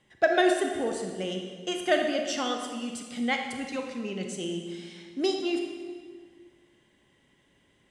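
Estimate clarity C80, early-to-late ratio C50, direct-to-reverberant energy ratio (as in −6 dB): 6.0 dB, 4.0 dB, 3.0 dB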